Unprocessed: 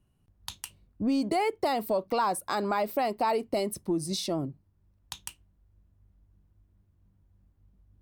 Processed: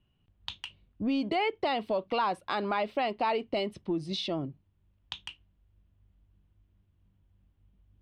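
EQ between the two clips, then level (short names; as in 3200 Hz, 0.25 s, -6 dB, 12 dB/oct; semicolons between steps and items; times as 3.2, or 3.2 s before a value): synth low-pass 3100 Hz, resonance Q 3; -2.5 dB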